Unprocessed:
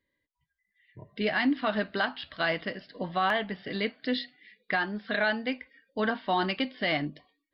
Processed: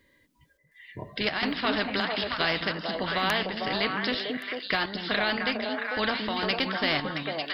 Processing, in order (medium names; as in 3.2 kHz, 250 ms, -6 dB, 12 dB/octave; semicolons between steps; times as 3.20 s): square tremolo 1.4 Hz, depth 60%, duty 80%; repeats whose band climbs or falls 224 ms, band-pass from 210 Hz, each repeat 1.4 oct, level 0 dB; spectrum-flattening compressor 2:1